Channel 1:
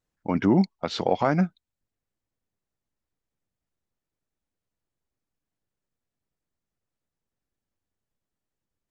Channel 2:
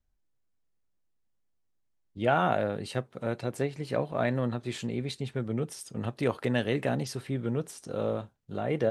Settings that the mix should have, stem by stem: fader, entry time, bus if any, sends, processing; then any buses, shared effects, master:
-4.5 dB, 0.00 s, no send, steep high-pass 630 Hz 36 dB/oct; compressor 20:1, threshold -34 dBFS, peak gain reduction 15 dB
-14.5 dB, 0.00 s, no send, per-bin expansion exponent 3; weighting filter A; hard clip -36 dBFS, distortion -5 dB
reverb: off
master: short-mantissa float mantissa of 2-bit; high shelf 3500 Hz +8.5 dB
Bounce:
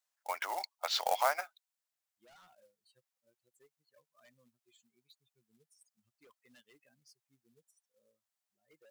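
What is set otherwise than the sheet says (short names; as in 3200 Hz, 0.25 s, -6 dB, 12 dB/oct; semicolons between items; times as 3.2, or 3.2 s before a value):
stem 1: missing compressor 20:1, threshold -34 dBFS, peak gain reduction 15 dB; stem 2 -14.5 dB -> -24.5 dB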